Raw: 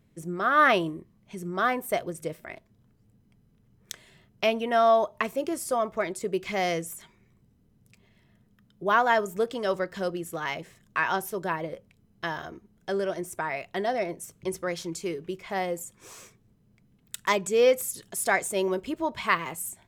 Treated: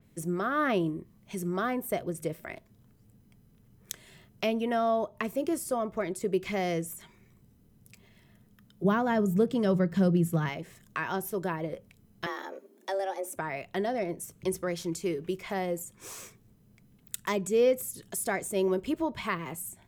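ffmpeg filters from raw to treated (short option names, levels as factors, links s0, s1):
-filter_complex "[0:a]asettb=1/sr,asplit=3[s0][s1][s2];[s0]atrim=end=8.844[s3];[s1]atrim=start=8.84:end=10.49,asetpts=PTS-STARTPTS,afade=t=in:d=0.004:c=qsin,afade=t=out:st=1.646:d=0.004:c=qsin,equalizer=f=160:w=1.3:g=14.5[s4];[s2]atrim=start=10.486[s5];[s3][s4]acrossfade=d=0.004:c1=hsin:c2=qsin[s6];[s6][s5]acrossfade=d=0.004:c1=qsin:c2=hsin,asettb=1/sr,asplit=3[s7][s8][s9];[s7]atrim=end=12.264[s10];[s8]atrim=start=12.26:end=13.36,asetpts=PTS-STARTPTS,afade=t=in:d=0.004:c=qsin,afade=t=out:st=1.096:d=0.004:c=qsin,afreqshift=190[s11];[s9]atrim=start=13.356[s12];[s10][s11]acrossfade=d=0.004:c1=hsin:c2=qsin[s13];[s13][s12]acrossfade=d=0.004:c1=qsin:c2=hsin,highshelf=f=8400:g=10,acrossover=split=410[s14][s15];[s15]acompressor=threshold=0.00891:ratio=2[s16];[s14][s16]amix=inputs=2:normalize=0,adynamicequalizer=threshold=0.00224:dfrequency=3900:dqfactor=0.7:tfrequency=3900:tqfactor=0.7:attack=5:release=100:ratio=0.375:range=2.5:mode=cutabove:tftype=highshelf,volume=1.33"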